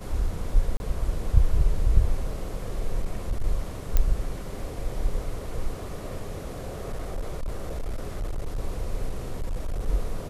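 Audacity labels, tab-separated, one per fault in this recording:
0.770000	0.800000	gap 31 ms
3.020000	3.440000	clipped -21 dBFS
3.970000	3.970000	pop -9 dBFS
6.670000	8.580000	clipped -25.5 dBFS
9.090000	9.880000	clipped -24.5 dBFS

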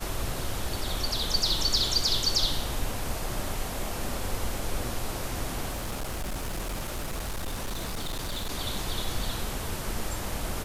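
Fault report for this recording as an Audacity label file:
5.710000	8.510000	clipped -28.5 dBFS

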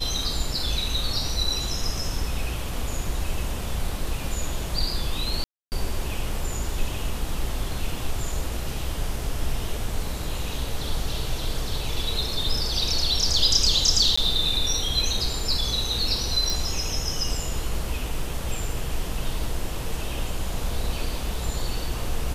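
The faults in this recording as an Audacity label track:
5.440000	5.720000	gap 0.279 s
14.160000	14.180000	gap 15 ms
16.500000	16.500000	pop

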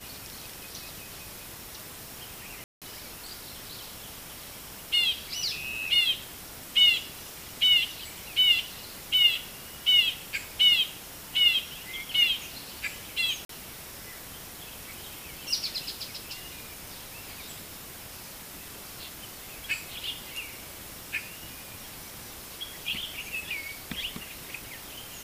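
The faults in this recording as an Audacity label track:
2.640000	2.820000	gap 0.177 s
13.450000	13.490000	gap 43 ms

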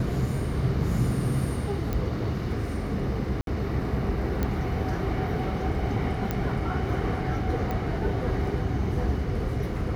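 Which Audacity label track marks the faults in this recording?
1.930000	1.930000	pop -16 dBFS
3.410000	3.470000	gap 62 ms
4.430000	4.430000	pop -14 dBFS
6.310000	6.310000	pop -14 dBFS
7.710000	7.710000	pop -19 dBFS

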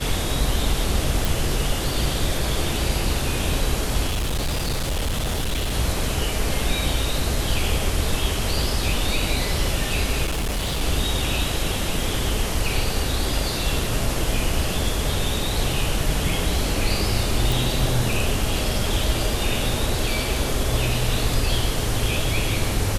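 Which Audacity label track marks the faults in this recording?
1.250000	1.250000	pop
4.070000	5.740000	clipped -20 dBFS
10.250000	10.820000	clipped -20.5 dBFS
17.520000	17.520000	pop

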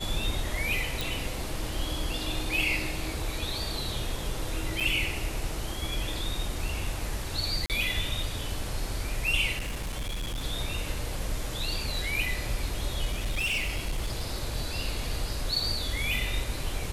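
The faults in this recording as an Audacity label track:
1.010000	1.010000	pop
4.800000	4.810000	gap 5.7 ms
7.660000	7.700000	gap 38 ms
9.580000	10.450000	clipped -29 dBFS
13.050000	14.280000	clipped -25 dBFS

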